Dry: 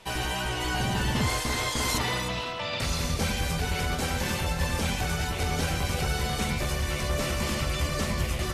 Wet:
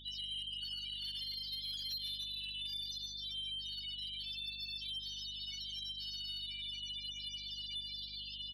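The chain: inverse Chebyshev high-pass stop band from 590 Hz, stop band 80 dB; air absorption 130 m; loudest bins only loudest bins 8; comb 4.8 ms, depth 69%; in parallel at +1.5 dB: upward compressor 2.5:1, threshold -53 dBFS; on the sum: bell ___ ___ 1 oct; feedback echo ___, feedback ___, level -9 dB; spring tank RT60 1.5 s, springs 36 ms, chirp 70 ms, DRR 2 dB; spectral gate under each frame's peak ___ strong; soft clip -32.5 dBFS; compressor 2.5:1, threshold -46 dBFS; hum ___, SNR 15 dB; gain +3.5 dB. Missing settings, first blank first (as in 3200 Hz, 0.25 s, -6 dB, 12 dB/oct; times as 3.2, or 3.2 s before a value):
8700 Hz, -8.5 dB, 0.148 s, 33%, -15 dB, 50 Hz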